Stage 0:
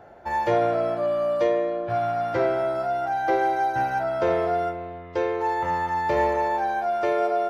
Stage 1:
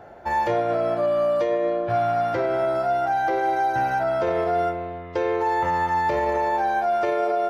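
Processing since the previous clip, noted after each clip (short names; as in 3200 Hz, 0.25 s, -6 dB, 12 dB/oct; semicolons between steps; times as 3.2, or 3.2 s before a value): limiter -18.5 dBFS, peak gain reduction 7.5 dB; gain +3.5 dB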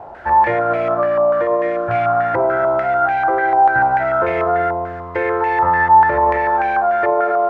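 bell 64 Hz +5 dB 0.98 oct; in parallel at -4.5 dB: requantised 6-bit, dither triangular; on the sum: stepped low-pass 6.8 Hz 950–2300 Hz; gain -1 dB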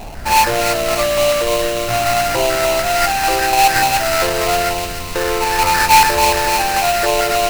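added noise brown -29 dBFS; sample-rate reducer 3400 Hz, jitter 20%; thin delay 0.295 s, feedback 56%, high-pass 2300 Hz, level -6 dB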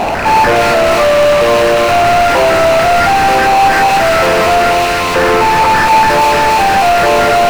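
rattling part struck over -29 dBFS, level -17 dBFS; overdrive pedal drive 34 dB, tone 1400 Hz, clips at -1 dBFS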